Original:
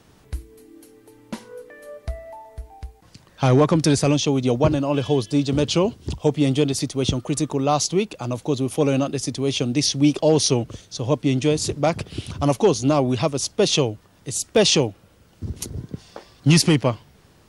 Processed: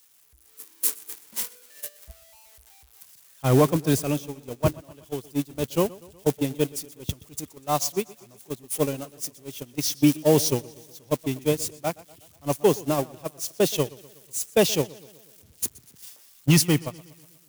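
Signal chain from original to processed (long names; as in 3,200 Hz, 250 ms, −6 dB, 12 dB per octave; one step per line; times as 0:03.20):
spike at every zero crossing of −14 dBFS
dynamic equaliser 4,300 Hz, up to −4 dB, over −33 dBFS, Q 1.7
automatic gain control gain up to 11.5 dB
noise gate −10 dBFS, range −28 dB
feedback echo with a swinging delay time 122 ms, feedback 55%, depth 72 cents, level −21.5 dB
level −7 dB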